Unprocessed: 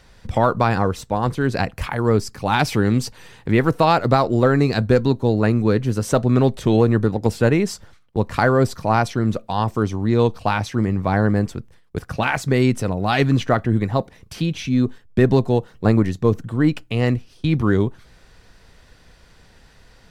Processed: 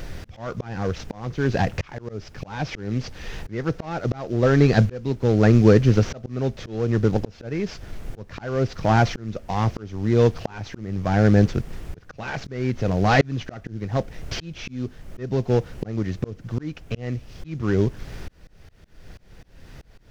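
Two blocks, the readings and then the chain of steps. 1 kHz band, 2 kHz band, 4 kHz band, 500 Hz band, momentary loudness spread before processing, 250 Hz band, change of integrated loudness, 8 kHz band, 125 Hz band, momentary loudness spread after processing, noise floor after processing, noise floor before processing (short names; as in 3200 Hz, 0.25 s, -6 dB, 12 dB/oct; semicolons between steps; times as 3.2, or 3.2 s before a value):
-7.0 dB, -4.5 dB, -5.5 dB, -4.0 dB, 8 LU, -4.5 dB, -3.5 dB, -6.5 dB, -2.5 dB, 18 LU, -49 dBFS, -51 dBFS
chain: CVSD 32 kbps; HPF 51 Hz; added noise brown -40 dBFS; in parallel at -2 dB: compressor, threshold -30 dBFS, peak gain reduction 18 dB; on the sum: fifteen-band EQ 250 Hz -3 dB, 1000 Hz -6 dB, 4000 Hz -4 dB; auto swell 0.677 s; gain +4.5 dB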